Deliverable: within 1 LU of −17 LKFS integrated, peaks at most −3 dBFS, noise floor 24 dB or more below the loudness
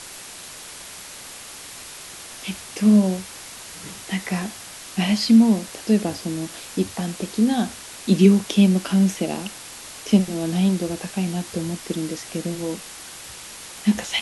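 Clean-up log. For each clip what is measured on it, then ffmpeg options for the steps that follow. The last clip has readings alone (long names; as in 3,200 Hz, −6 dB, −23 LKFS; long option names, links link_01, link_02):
background noise floor −39 dBFS; target noise floor −46 dBFS; integrated loudness −21.5 LKFS; sample peak −2.5 dBFS; target loudness −17.0 LKFS
→ -af "afftdn=noise_reduction=7:noise_floor=-39"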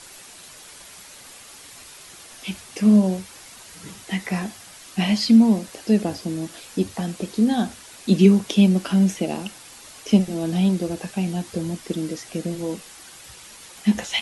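background noise floor −44 dBFS; target noise floor −46 dBFS
→ -af "afftdn=noise_reduction=6:noise_floor=-44"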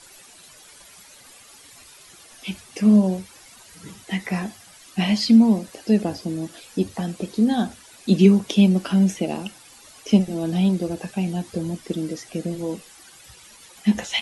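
background noise floor −48 dBFS; integrated loudness −21.5 LKFS; sample peak −2.5 dBFS; target loudness −17.0 LKFS
→ -af "volume=4.5dB,alimiter=limit=-3dB:level=0:latency=1"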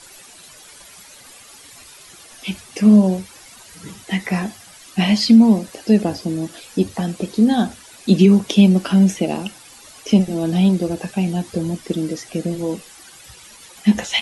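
integrated loudness −17.5 LKFS; sample peak −3.0 dBFS; background noise floor −44 dBFS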